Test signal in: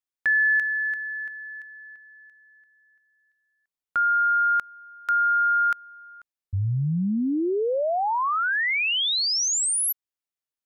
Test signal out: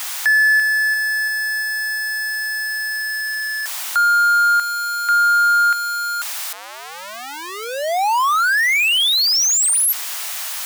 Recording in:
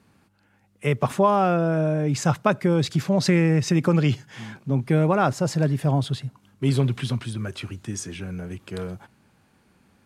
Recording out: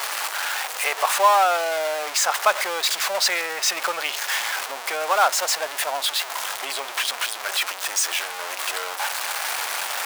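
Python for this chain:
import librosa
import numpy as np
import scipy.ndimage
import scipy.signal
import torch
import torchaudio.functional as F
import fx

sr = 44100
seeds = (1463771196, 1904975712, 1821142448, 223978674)

y = x + 0.5 * 10.0 ** (-21.0 / 20.0) * np.sign(x)
y = scipy.signal.sosfilt(scipy.signal.butter(4, 700.0, 'highpass', fs=sr, output='sos'), y)
y = y * 10.0 ** (3.5 / 20.0)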